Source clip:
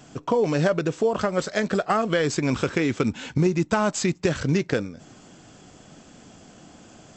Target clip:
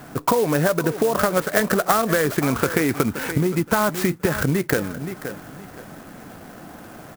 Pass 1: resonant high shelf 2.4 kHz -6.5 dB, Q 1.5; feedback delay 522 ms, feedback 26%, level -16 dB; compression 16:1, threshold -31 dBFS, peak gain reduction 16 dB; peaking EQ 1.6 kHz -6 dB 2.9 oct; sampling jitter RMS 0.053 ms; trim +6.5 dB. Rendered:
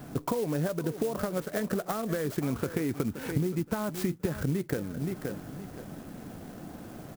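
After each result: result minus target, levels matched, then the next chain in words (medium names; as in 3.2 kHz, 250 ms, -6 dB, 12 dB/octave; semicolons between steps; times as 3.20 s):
compression: peak gain reduction +7 dB; 2 kHz band -5.5 dB
resonant high shelf 2.4 kHz -6.5 dB, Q 1.5; feedback delay 522 ms, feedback 26%, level -16 dB; compression 16:1, threshold -23.5 dBFS, peak gain reduction 9 dB; peaking EQ 1.6 kHz -6 dB 2.9 oct; sampling jitter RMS 0.053 ms; trim +6.5 dB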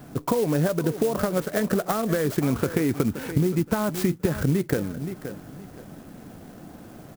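2 kHz band -6.5 dB
resonant high shelf 2.4 kHz -6.5 dB, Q 1.5; feedback delay 522 ms, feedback 26%, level -16 dB; compression 16:1, threshold -23.5 dBFS, peak gain reduction 9 dB; peaking EQ 1.6 kHz +4.5 dB 2.9 oct; sampling jitter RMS 0.053 ms; trim +6.5 dB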